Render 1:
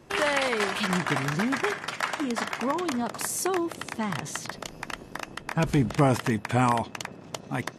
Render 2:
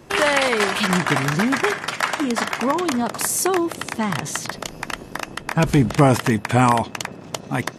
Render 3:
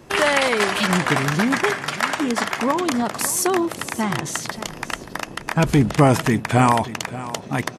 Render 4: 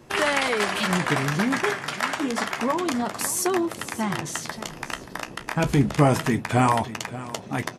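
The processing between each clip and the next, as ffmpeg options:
-af "highshelf=f=10000:g=4,volume=2.24"
-af "aecho=1:1:580|1160:0.168|0.0302"
-af "flanger=delay=8.2:depth=8.8:regen=-53:speed=0.28:shape=triangular"

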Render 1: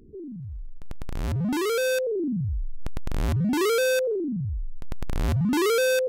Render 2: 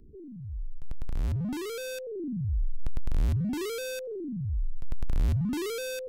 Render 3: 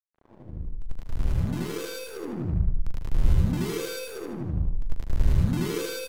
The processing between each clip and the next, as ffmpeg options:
-filter_complex "[0:a]lowshelf=f=110:g=11.5,acrossover=split=450|1900[s0][s1][s2];[s1]acompressor=threshold=0.0141:ratio=6[s3];[s0][s3][s2]amix=inputs=3:normalize=0,volume=0.376"
-filter_complex "[0:a]asplit=2[s0][s1];[s1]aecho=0:1:41|79|88|105|117|188:0.335|0.447|0.211|0.531|0.501|0.531[s2];[s0][s2]amix=inputs=2:normalize=0,aeval=exprs='sgn(val(0))*max(abs(val(0))-0.0119,0)':c=same,asplit=2[s3][s4];[s4]aecho=0:1:77|154|231|308|385:0.668|0.254|0.0965|0.0367|0.0139[s5];[s3][s5]amix=inputs=2:normalize=0"

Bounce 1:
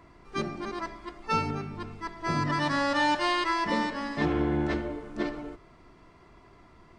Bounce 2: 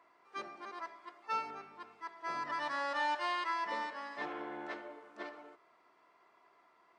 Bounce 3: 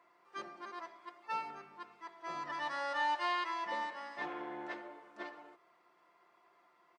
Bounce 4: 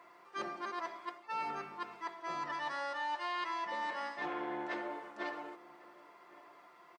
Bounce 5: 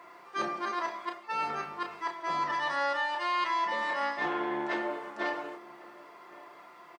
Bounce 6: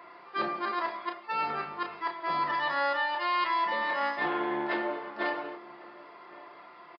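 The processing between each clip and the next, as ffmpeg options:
-af "highpass=730,highshelf=f=2400:g=-10,volume=0.596"
-af "aecho=1:1:5.7:0.47,volume=0.794"
-filter_complex "[0:a]areverse,acompressor=threshold=0.00562:ratio=6,areverse,asplit=2[s0][s1];[s1]adelay=1108,volume=0.112,highshelf=f=4000:g=-24.9[s2];[s0][s2]amix=inputs=2:normalize=0,volume=2.82"
-filter_complex "[0:a]asplit=2[s0][s1];[s1]adelay=32,volume=0.473[s2];[s0][s2]amix=inputs=2:normalize=0,volume=2.11"
-af "aresample=11025,aresample=44100,volume=1.19"

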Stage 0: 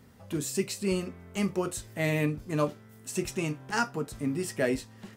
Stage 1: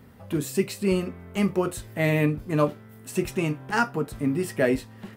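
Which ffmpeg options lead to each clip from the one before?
-af "equalizer=f=6400:w=0.92:g=-9,volume=1.88"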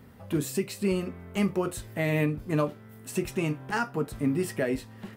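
-af "alimiter=limit=0.168:level=0:latency=1:release=242,volume=0.891"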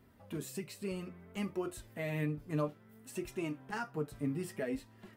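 -af "flanger=delay=2.9:depth=4.1:regen=38:speed=0.6:shape=sinusoidal,volume=0.473"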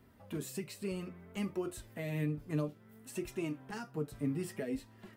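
-filter_complex "[0:a]acrossover=split=490|3000[s0][s1][s2];[s1]acompressor=threshold=0.00501:ratio=6[s3];[s0][s3][s2]amix=inputs=3:normalize=0,volume=1.12"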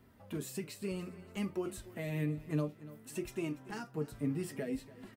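-af "aecho=1:1:288|576|864:0.126|0.0428|0.0146"

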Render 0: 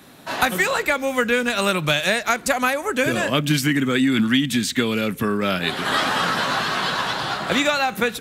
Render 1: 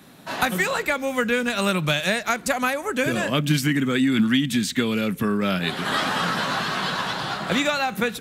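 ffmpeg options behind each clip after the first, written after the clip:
-af "equalizer=f=180:w=2.1:g=5.5,volume=0.708"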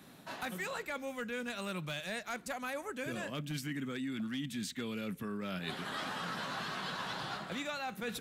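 -af "volume=4.73,asoftclip=hard,volume=0.211,areverse,acompressor=threshold=0.0355:ratio=6,areverse,volume=0.422"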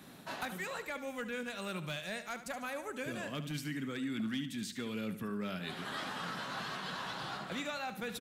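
-af "alimiter=level_in=2.66:limit=0.0631:level=0:latency=1:release=498,volume=0.376,aecho=1:1:73|146|219|292:0.251|0.103|0.0422|0.0173,volume=1.26"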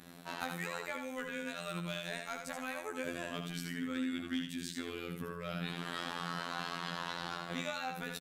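-af "aecho=1:1:79:0.501,afftfilt=real='hypot(re,im)*cos(PI*b)':imag='0':win_size=2048:overlap=0.75,volume=1.33"

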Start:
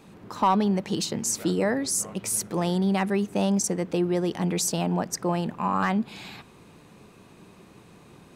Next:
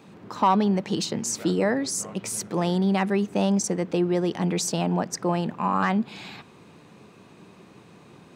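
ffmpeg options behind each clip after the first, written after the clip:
-af "highpass=98,equalizer=f=12000:w=1:g=-10,volume=1.19"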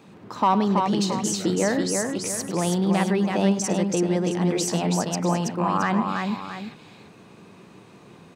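-af "aecho=1:1:103|328|671:0.2|0.631|0.251"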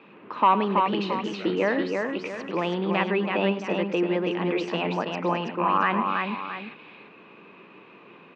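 -af "highpass=290,equalizer=f=730:t=q:w=4:g=-5,equalizer=f=1100:t=q:w=4:g=3,equalizer=f=2600:t=q:w=4:g=8,lowpass=f=3100:w=0.5412,lowpass=f=3100:w=1.3066,volume=1.12"

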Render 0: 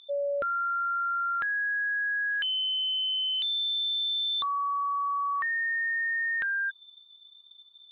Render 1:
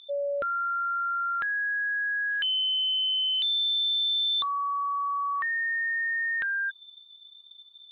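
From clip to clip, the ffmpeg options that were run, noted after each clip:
-af "equalizer=f=3600:t=o:w=0.95:g=3"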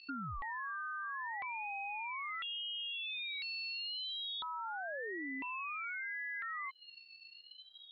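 -af "aemphasis=mode=reproduction:type=50fm,acompressor=threshold=0.0112:ratio=6,aeval=exprs='val(0)*sin(2*PI*510*n/s+510*0.7/0.56*sin(2*PI*0.56*n/s))':c=same,volume=1.12"

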